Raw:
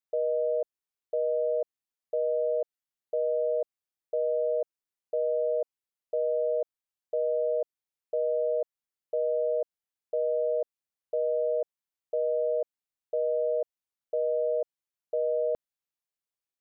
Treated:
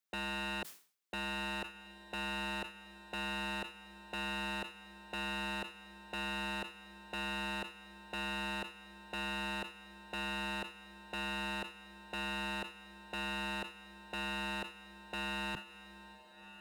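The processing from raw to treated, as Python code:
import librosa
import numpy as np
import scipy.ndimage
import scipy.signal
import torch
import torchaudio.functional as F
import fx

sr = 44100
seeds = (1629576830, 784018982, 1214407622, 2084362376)

y = scipy.signal.sosfilt(scipy.signal.cheby1(3, 1.0, 160.0, 'highpass', fs=sr, output='sos'), x)
y = fx.peak_eq(y, sr, hz=600.0, db=-3.5, octaves=1.1)
y = 10.0 ** (-37.5 / 20.0) * (np.abs((y / 10.0 ** (-37.5 / 20.0) + 3.0) % 4.0 - 2.0) - 1.0)
y = fx.echo_diffused(y, sr, ms=1454, feedback_pct=44, wet_db=-14.0)
y = fx.sustainer(y, sr, db_per_s=140.0)
y = y * librosa.db_to_amplitude(4.0)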